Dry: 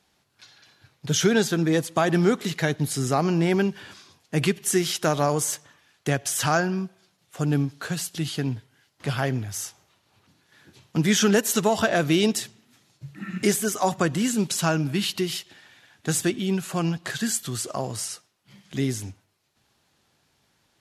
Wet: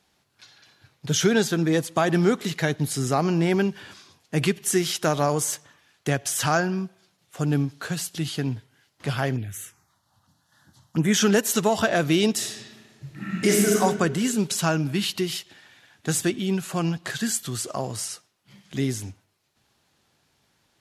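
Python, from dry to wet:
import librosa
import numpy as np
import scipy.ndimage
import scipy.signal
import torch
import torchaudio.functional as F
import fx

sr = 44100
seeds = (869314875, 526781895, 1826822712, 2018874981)

y = fx.env_phaser(x, sr, low_hz=390.0, high_hz=4700.0, full_db=-19.0, at=(9.36, 11.14))
y = fx.reverb_throw(y, sr, start_s=12.33, length_s=1.41, rt60_s=1.6, drr_db=-2.0)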